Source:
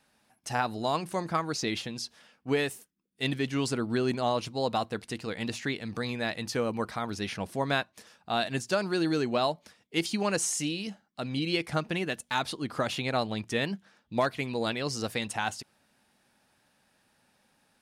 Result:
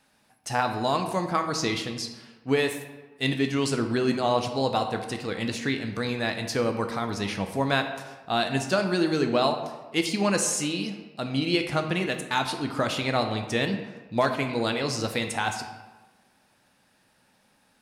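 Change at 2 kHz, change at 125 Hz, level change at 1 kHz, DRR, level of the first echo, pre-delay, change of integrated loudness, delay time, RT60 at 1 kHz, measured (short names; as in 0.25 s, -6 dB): +4.0 dB, +4.0 dB, +4.5 dB, 5.5 dB, none, 10 ms, +4.0 dB, none, 1.3 s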